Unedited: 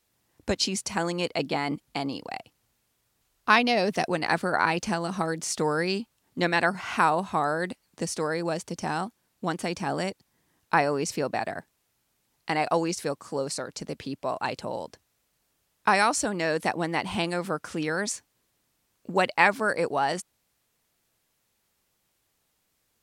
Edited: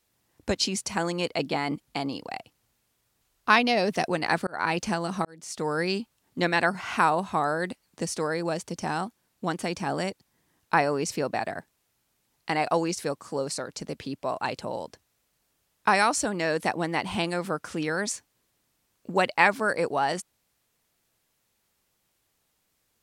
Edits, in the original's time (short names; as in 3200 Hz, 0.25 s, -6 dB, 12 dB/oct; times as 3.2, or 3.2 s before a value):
4.47–4.73 fade in
5.25–5.84 fade in